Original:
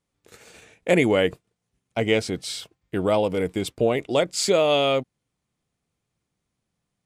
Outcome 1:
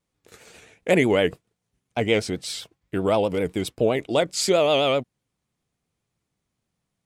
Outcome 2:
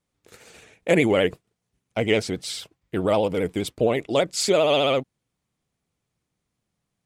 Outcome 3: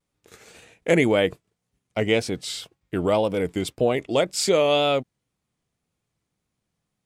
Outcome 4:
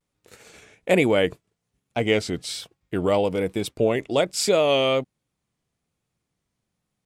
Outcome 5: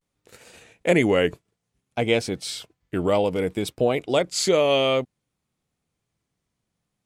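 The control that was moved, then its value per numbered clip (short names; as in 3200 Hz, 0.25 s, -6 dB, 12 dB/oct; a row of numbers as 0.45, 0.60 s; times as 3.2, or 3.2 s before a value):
vibrato, rate: 7.7, 15, 1.9, 1.2, 0.59 Hz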